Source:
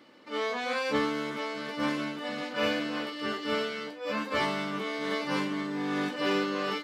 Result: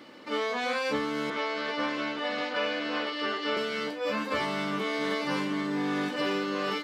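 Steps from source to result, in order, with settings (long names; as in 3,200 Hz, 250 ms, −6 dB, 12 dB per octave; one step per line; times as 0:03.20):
0:01.30–0:03.57: three-way crossover with the lows and the highs turned down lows −13 dB, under 310 Hz, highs −18 dB, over 6,100 Hz
downward compressor 5 to 1, threshold −34 dBFS, peak gain reduction 10.5 dB
level +7 dB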